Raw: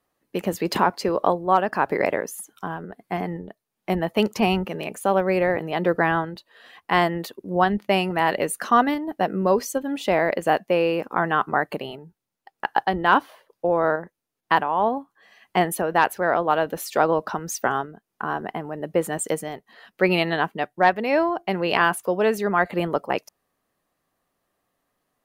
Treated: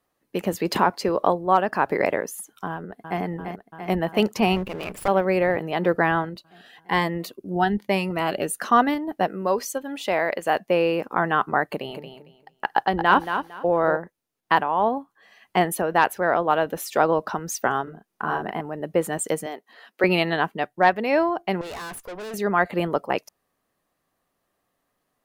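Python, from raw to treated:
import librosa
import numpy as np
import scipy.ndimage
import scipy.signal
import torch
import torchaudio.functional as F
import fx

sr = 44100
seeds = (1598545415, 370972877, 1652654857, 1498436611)

y = fx.echo_throw(x, sr, start_s=2.7, length_s=0.51, ms=340, feedback_pct=80, wet_db=-7.0)
y = fx.lower_of_two(y, sr, delay_ms=0.38, at=(4.56, 5.08))
y = fx.notch_cascade(y, sr, direction='rising', hz=1.1, at=(6.29, 8.59))
y = fx.low_shelf(y, sr, hz=370.0, db=-9.5, at=(9.27, 10.56))
y = fx.echo_feedback(y, sr, ms=227, feedback_pct=21, wet_db=-8.5, at=(11.67, 13.97))
y = fx.notch(y, sr, hz=4400.0, q=12.0, at=(16.11, 17.04))
y = fx.doubler(y, sr, ms=38.0, db=-4.0, at=(17.83, 18.61))
y = fx.highpass(y, sr, hz=250.0, slope=24, at=(19.46, 20.04))
y = fx.tube_stage(y, sr, drive_db=33.0, bias=0.7, at=(21.61, 22.34))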